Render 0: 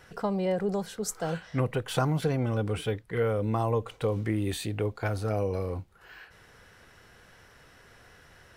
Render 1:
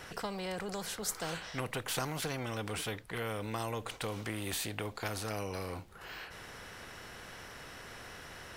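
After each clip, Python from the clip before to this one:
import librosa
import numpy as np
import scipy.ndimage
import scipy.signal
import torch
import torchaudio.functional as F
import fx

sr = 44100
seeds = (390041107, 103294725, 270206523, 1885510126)

y = fx.spectral_comp(x, sr, ratio=2.0)
y = F.gain(torch.from_numpy(y), -8.0).numpy()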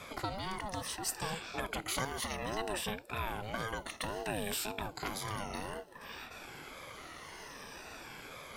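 y = fx.spec_ripple(x, sr, per_octave=1.5, drift_hz=-0.6, depth_db=16)
y = fx.ring_lfo(y, sr, carrier_hz=440.0, swing_pct=30, hz=1.9)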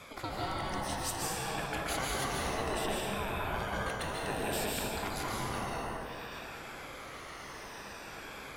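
y = fx.rev_plate(x, sr, seeds[0], rt60_s=2.5, hf_ratio=0.5, predelay_ms=120, drr_db=-4.5)
y = F.gain(torch.from_numpy(y), -2.5).numpy()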